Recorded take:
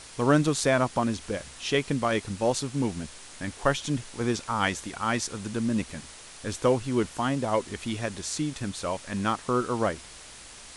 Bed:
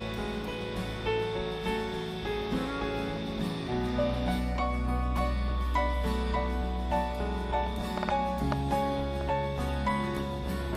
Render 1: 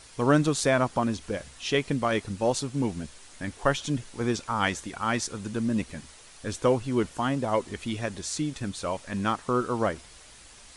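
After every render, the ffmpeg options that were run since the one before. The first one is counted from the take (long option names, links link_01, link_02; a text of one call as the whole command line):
ffmpeg -i in.wav -af "afftdn=noise_reduction=6:noise_floor=-46" out.wav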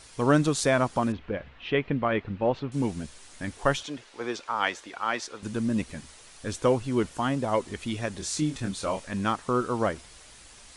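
ffmpeg -i in.wav -filter_complex "[0:a]asettb=1/sr,asplit=3[link_01][link_02][link_03];[link_01]atrim=end=1.124[link_04];[link_02]atrim=start=1.12:end=2.72,asetpts=PTS-STARTPTS,afade=type=in:duration=0.004:curve=qsin,afade=type=out:start_time=1.596:duration=0.004:curve=qsin,lowpass=frequency=2900:width=0.5412,lowpass=frequency=2900:width=1.3066[link_05];[link_03]atrim=start=2.716[link_06];[link_04][link_05]acrossfade=duration=0.004:curve1=hsin:curve2=qsin[link_07];[link_07][link_06]acrossfade=duration=0.004:curve1=qsin:curve2=hsin,asettb=1/sr,asplit=3[link_08][link_09][link_10];[link_08]atrim=end=3.834[link_11];[link_09]atrim=start=3.83:end=5.43,asetpts=PTS-STARTPTS,afade=type=in:duration=0.004:curve=qsin,afade=type=out:start_time=1.596:duration=0.004:curve=qsin,acrossover=split=330 5300:gain=0.112 1 0.224[link_12][link_13][link_14];[link_12][link_13][link_14]amix=inputs=3:normalize=0[link_15];[link_10]atrim=start=5.426[link_16];[link_11][link_15]acrossfade=duration=0.004:curve1=hsin:curve2=qsin[link_17];[link_17][link_16]acrossfade=duration=0.004:curve1=qsin:curve2=hsin,asettb=1/sr,asplit=3[link_18][link_19][link_20];[link_18]atrim=end=8.184[link_21];[link_19]atrim=start=8.18:end=9.07,asetpts=PTS-STARTPTS,afade=type=in:duration=0.004:curve=qsin,afade=type=out:start_time=0.886:duration=0.004:curve=qsin,asplit=2[link_22][link_23];[link_23]adelay=26,volume=-5dB[link_24];[link_22][link_24]amix=inputs=2:normalize=0,atrim=end_sample=39249[link_25];[link_20]atrim=start=9.066[link_26];[link_21][link_25]acrossfade=duration=0.004:curve1=hsin:curve2=qsin[link_27];[link_27][link_26]acrossfade=duration=0.004:curve1=qsin:curve2=hsin" out.wav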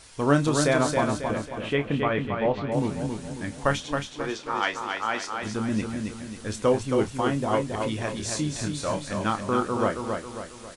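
ffmpeg -i in.wav -filter_complex "[0:a]asplit=2[link_01][link_02];[link_02]adelay=28,volume=-9dB[link_03];[link_01][link_03]amix=inputs=2:normalize=0,aecho=1:1:272|544|816|1088|1360|1632:0.562|0.253|0.114|0.0512|0.0231|0.0104" out.wav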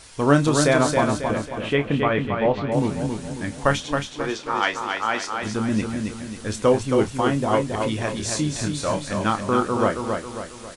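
ffmpeg -i in.wav -af "volume=4dB" out.wav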